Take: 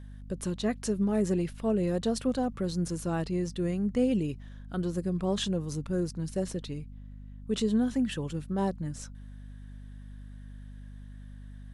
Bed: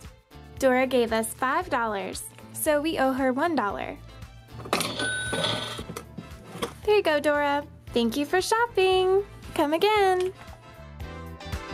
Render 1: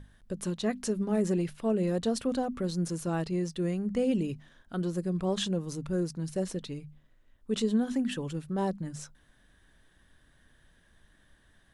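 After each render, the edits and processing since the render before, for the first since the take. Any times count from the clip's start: hum notches 50/100/150/200/250 Hz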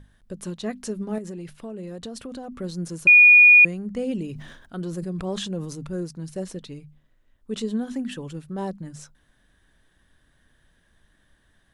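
1.18–2.52 s: compression 5:1, threshold -32 dBFS; 3.07–3.65 s: bleep 2.45 kHz -8 dBFS; 4.26–5.92 s: decay stretcher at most 51 dB/s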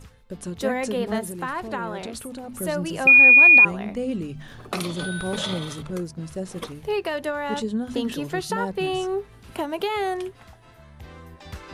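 add bed -4.5 dB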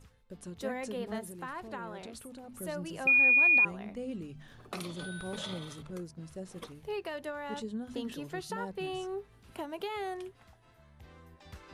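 trim -11.5 dB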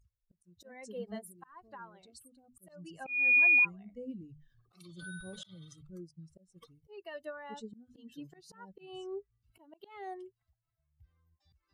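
expander on every frequency bin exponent 2; slow attack 282 ms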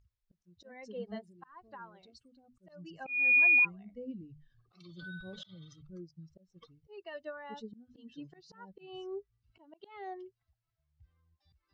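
steep low-pass 5.7 kHz 36 dB/octave

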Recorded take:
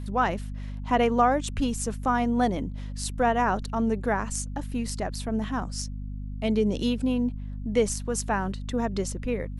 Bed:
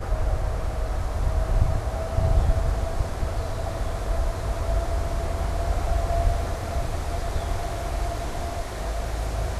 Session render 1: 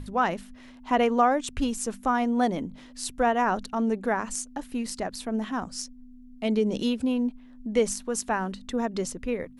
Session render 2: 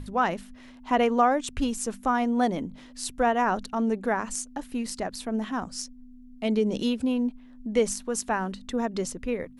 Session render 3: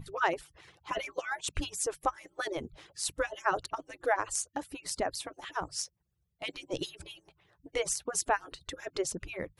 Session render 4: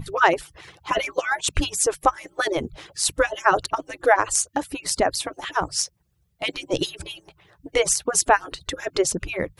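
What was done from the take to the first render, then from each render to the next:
hum notches 50/100/150/200 Hz
no audible change
harmonic-percussive separation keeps percussive
trim +11.5 dB; peak limiter -3 dBFS, peak gain reduction 1 dB

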